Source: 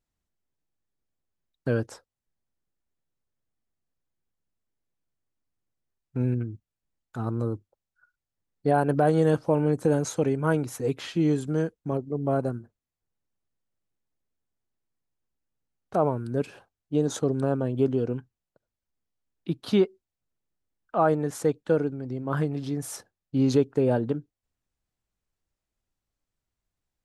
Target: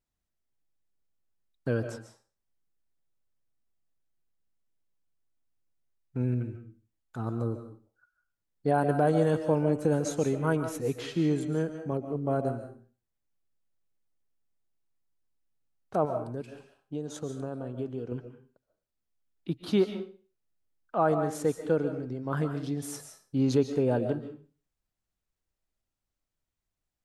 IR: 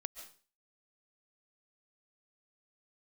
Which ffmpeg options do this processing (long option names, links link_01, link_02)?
-filter_complex "[0:a]asettb=1/sr,asplit=3[link_01][link_02][link_03];[link_01]atrim=end=16.054[link_04];[link_02]atrim=start=16.05:end=18.12,asetpts=PTS-STARTPTS,afade=type=in:duration=0.004:curve=qsin,afade=type=out:start_time=2.066:duration=0.004:curve=qsin,acompressor=threshold=-35dB:ratio=2[link_05];[link_03]atrim=start=18.116[link_06];[link_04][link_05]acrossfade=duration=0.004:curve1=hsin:curve2=qsin[link_07];[link_07][link_06]acrossfade=duration=0.004:curve1=qsin:curve2=hsin[link_08];[1:a]atrim=start_sample=2205[link_09];[link_08][link_09]afir=irnorm=-1:irlink=0"